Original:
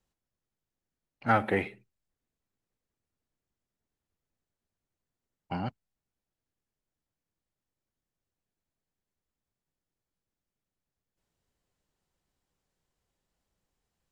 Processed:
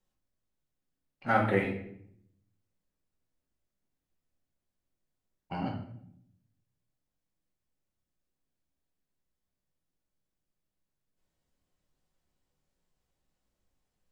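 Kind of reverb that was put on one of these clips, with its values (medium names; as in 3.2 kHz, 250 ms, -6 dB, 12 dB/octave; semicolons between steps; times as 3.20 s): simulated room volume 140 m³, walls mixed, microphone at 1 m; trim -4 dB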